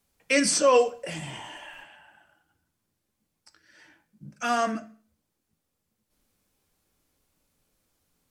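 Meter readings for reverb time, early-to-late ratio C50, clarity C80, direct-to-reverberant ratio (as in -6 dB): 0.45 s, 16.0 dB, 20.0 dB, 9.0 dB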